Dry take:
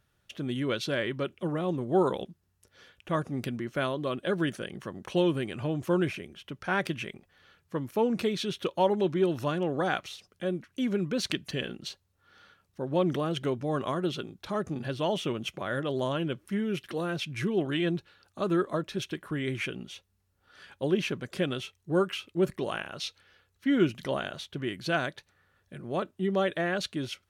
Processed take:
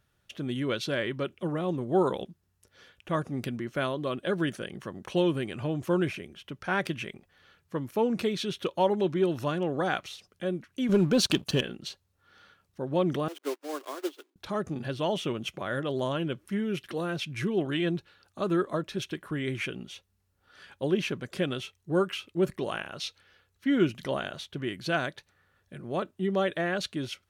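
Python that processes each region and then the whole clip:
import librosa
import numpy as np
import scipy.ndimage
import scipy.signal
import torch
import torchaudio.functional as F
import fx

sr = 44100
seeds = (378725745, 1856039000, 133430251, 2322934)

y = fx.chain(x, sr, fx.peak_eq(hz=2000.0, db=-13.0, octaves=0.33),
    fx.leveller(passes=2), at=(10.89, 11.61))
y = fx.chain(y, sr, fx.block_float(bits=3),
    fx.cheby1_highpass(hz=280.0, order=6),
    fx.upward_expand(threshold_db=-46.0, expansion=2.5), at=(13.28, 14.36))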